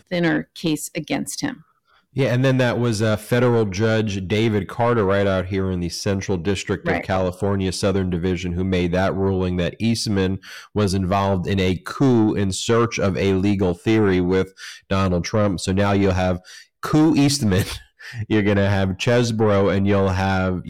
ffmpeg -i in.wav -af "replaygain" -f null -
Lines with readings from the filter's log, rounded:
track_gain = +1.6 dB
track_peak = 0.201